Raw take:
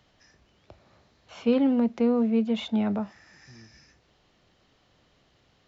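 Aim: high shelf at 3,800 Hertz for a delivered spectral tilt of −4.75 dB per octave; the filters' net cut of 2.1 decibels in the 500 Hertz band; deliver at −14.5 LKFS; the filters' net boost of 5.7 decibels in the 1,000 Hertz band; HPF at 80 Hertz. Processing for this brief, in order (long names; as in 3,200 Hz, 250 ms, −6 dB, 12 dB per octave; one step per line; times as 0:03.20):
high-pass filter 80 Hz
parametric band 500 Hz −4 dB
parametric band 1,000 Hz +8.5 dB
high-shelf EQ 3,800 Hz +8.5 dB
level +11 dB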